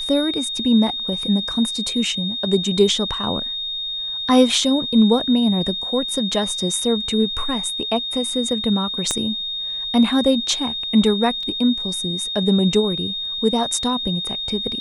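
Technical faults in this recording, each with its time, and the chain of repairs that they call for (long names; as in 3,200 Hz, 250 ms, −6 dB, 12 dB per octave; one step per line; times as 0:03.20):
whistle 3,700 Hz −24 dBFS
0:09.11: click −7 dBFS
0:11.43: drop-out 2.4 ms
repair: click removal
notch filter 3,700 Hz, Q 30
repair the gap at 0:11.43, 2.4 ms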